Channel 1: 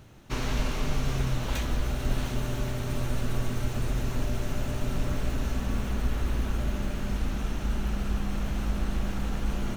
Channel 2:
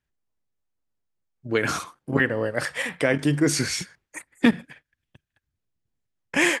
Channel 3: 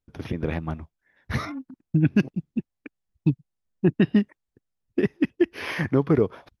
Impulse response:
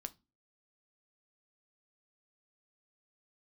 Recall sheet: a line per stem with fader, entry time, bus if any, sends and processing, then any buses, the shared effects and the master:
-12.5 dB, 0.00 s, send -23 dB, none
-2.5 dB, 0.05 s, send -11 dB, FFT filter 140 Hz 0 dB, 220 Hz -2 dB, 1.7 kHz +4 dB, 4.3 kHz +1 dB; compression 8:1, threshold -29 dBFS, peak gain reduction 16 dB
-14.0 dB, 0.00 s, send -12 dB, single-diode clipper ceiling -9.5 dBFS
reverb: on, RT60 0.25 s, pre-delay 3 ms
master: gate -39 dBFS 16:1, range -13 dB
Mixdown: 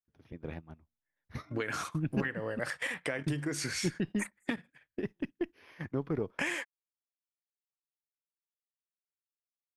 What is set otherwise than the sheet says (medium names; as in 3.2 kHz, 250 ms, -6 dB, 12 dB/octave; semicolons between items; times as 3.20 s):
stem 1: muted; stem 2: send off